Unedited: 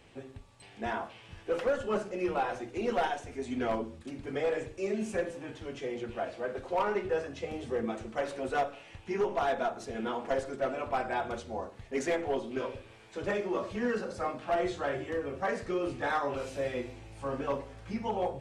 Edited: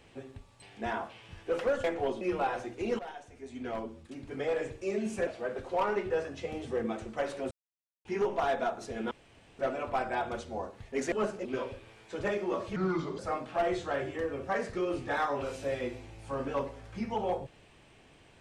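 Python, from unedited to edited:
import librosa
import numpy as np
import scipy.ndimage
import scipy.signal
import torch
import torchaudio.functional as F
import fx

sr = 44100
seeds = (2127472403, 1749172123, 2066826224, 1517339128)

y = fx.edit(x, sr, fx.swap(start_s=1.84, length_s=0.33, other_s=12.11, other_length_s=0.37),
    fx.fade_in_from(start_s=2.95, length_s=1.73, floor_db=-15.0),
    fx.cut(start_s=5.23, length_s=1.03),
    fx.silence(start_s=8.5, length_s=0.54),
    fx.room_tone_fill(start_s=10.1, length_s=0.48),
    fx.speed_span(start_s=13.79, length_s=0.33, speed=0.77), tone=tone)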